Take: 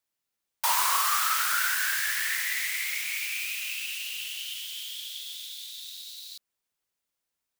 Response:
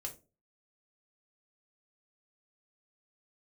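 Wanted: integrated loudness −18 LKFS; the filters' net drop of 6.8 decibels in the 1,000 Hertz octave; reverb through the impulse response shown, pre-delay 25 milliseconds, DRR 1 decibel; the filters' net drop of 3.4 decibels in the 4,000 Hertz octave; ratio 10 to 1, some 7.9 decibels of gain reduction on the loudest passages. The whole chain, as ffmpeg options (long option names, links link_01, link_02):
-filter_complex "[0:a]equalizer=frequency=1000:width_type=o:gain=-8.5,equalizer=frequency=4000:width_type=o:gain=-4,acompressor=threshold=-32dB:ratio=10,asplit=2[link_01][link_02];[1:a]atrim=start_sample=2205,adelay=25[link_03];[link_02][link_03]afir=irnorm=-1:irlink=0,volume=1dB[link_04];[link_01][link_04]amix=inputs=2:normalize=0,volume=14.5dB"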